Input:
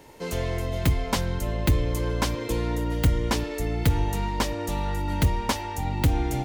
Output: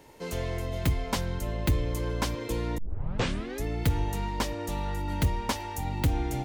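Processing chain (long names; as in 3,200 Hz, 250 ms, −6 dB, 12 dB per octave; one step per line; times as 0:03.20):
0:02.78: tape start 0.86 s
0:05.60–0:06.01: high-shelf EQ 8,400 Hz +7 dB
level −4 dB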